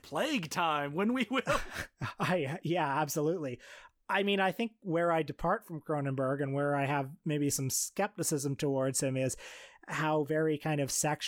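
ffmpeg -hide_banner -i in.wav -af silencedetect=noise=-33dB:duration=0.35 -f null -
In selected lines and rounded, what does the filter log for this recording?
silence_start: 3.54
silence_end: 4.09 | silence_duration: 0.56
silence_start: 9.33
silence_end: 9.90 | silence_duration: 0.57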